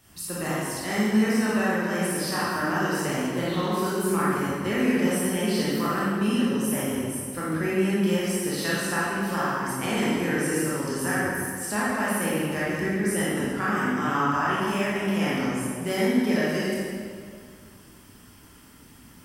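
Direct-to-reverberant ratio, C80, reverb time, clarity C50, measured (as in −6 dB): −8.5 dB, −1.5 dB, 2.1 s, −4.0 dB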